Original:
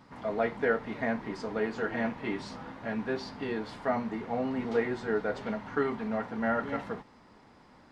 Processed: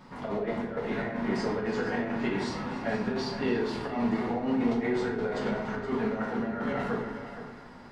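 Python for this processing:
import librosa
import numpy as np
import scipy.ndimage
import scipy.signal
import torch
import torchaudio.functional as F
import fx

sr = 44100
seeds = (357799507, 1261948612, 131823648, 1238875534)

y = fx.echo_split(x, sr, split_hz=690.0, low_ms=86, high_ms=287, feedback_pct=52, wet_db=-15.0)
y = fx.over_compress(y, sr, threshold_db=-33.0, ratio=-0.5)
y = y + 10.0 ** (-12.0 / 20.0) * np.pad(y, (int(470 * sr / 1000.0), 0))[:len(y)]
y = fx.room_shoebox(y, sr, seeds[0], volume_m3=150.0, walls='mixed', distance_m=1.0)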